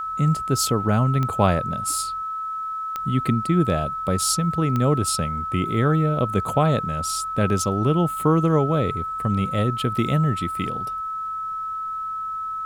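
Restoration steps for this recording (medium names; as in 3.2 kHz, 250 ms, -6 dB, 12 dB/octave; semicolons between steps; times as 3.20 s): de-click; band-stop 1.3 kHz, Q 30; expander -21 dBFS, range -21 dB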